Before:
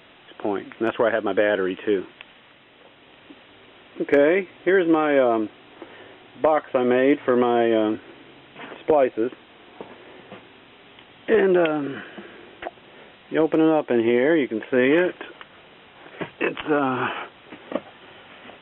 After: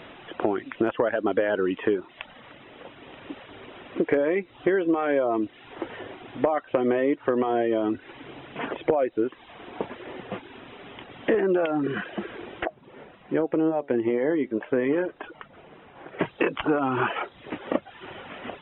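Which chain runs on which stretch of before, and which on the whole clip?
12.65–16.19 s: low-pass 1.9 kHz 6 dB/octave + flange 1.9 Hz, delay 6 ms, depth 1.8 ms, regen +84%
whole clip: reverb removal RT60 0.57 s; treble shelf 2.9 kHz -11 dB; compression 6:1, threshold -29 dBFS; trim +8.5 dB

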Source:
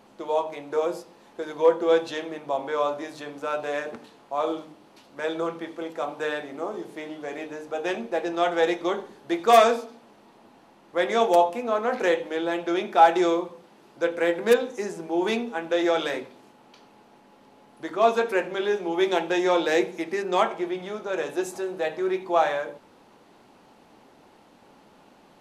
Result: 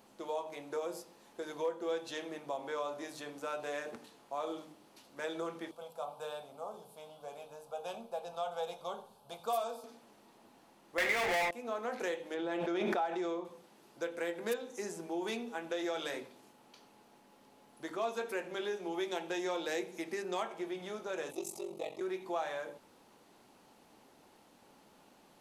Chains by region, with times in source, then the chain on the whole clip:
5.71–9.84 s: peaking EQ 6.4 kHz -8.5 dB 0.68 oct + static phaser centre 790 Hz, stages 4
10.98–11.51 s: overdrive pedal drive 31 dB, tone 3.4 kHz, clips at -8 dBFS + hysteresis with a dead band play -25 dBFS + peaking EQ 2.1 kHz +12.5 dB 0.64 oct
12.34–13.45 s: low-pass 2.2 kHz 6 dB/octave + swell ahead of each attack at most 22 dB/s
21.31–22.01 s: Butterworth band-stop 1.6 kHz, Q 1.9 + ring modulator 23 Hz
whole clip: treble shelf 5.9 kHz +12 dB; compression 2.5:1, threshold -27 dBFS; trim -8.5 dB

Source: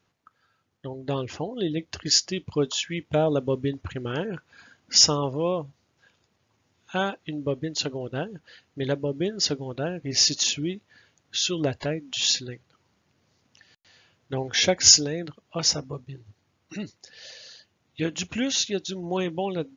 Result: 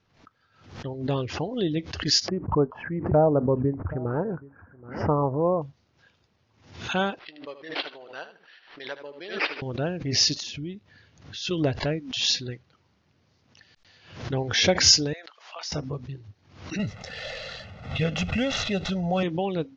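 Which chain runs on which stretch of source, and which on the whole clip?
2.28–5.62 s: inverse Chebyshev low-pass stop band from 3.4 kHz, stop band 50 dB + dynamic bell 820 Hz, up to +5 dB, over -40 dBFS, Q 1.4 + delay 776 ms -23 dB
7.19–9.62 s: high-pass 990 Hz + feedback delay 77 ms, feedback 20%, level -12 dB + decimation joined by straight lines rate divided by 6×
10.40–11.51 s: bass shelf 210 Hz +8 dB + compression 1.5:1, threshold -51 dBFS
15.13–15.72 s: high-pass 750 Hz 24 dB/octave + compression 3:1, threshold -35 dBFS
16.79–19.23 s: median filter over 9 samples + comb 1.5 ms, depth 86% + level flattener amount 50%
whole clip: steep low-pass 5.9 kHz 36 dB/octave; bass shelf 95 Hz +8.5 dB; swell ahead of each attack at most 100 dB/s

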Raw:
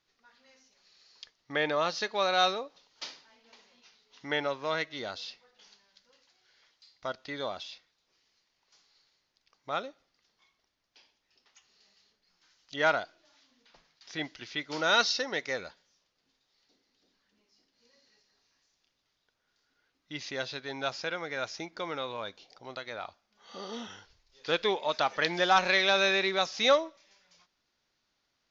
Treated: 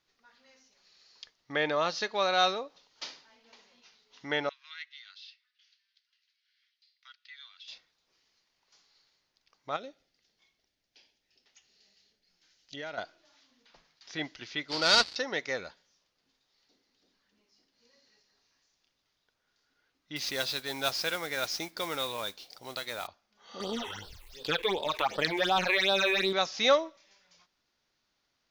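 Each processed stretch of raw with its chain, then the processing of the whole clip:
4.49–7.68 s: Bessel high-pass 2.8 kHz, order 6 + distance through air 220 m
9.76–12.98 s: peaking EQ 1.1 kHz -10.5 dB + compression 4:1, threshold -38 dBFS
14.68–15.16 s: dead-time distortion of 0.12 ms + resonant low-pass 4.6 kHz, resonance Q 7.2
20.16–23.07 s: peaking EQ 4.9 kHz +8.5 dB 1.5 oct + modulation noise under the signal 12 dB
23.60–26.33 s: companding laws mixed up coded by A + phase shifter stages 8, 2.7 Hz, lowest notch 180–2100 Hz + level flattener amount 50%
whole clip: none

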